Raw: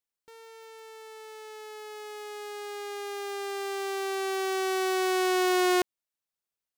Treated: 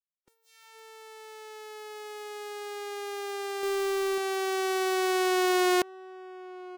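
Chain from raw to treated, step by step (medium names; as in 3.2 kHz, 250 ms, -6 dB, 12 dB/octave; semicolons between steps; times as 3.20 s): echo from a far wall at 190 m, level -17 dB; 3.63–4.18 s: waveshaping leveller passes 3; spectral noise reduction 27 dB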